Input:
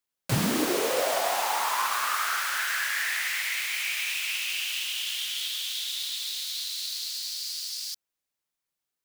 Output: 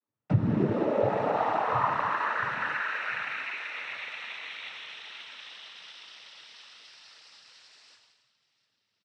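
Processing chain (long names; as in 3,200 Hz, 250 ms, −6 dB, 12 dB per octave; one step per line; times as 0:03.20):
low-pass filter 1,900 Hz 12 dB per octave
spectral tilt −4 dB per octave
repeating echo 695 ms, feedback 50%, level −21 dB
reverb whose tail is shaped and stops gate 390 ms falling, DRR −1 dB
downward compressor 6 to 1, threshold −22 dBFS, peak gain reduction 14 dB
cochlear-implant simulation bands 12
0:02.77–0:03.80: high-pass filter 380 Hz 6 dB per octave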